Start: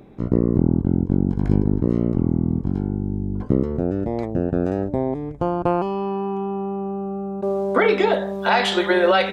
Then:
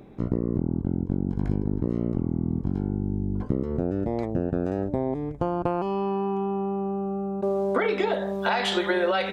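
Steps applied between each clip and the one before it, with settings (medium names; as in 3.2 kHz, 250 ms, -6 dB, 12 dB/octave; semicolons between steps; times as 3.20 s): compression, threshold -19 dBFS, peak gain reduction 8.5 dB; trim -1.5 dB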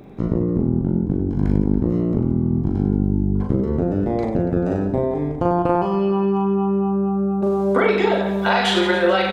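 reverse bouncing-ball echo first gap 40 ms, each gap 1.4×, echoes 5; trim +4.5 dB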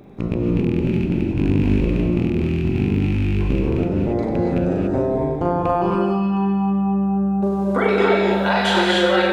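rattle on loud lows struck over -15 dBFS, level -21 dBFS; reverberation, pre-delay 3 ms, DRR 0 dB; trim -2 dB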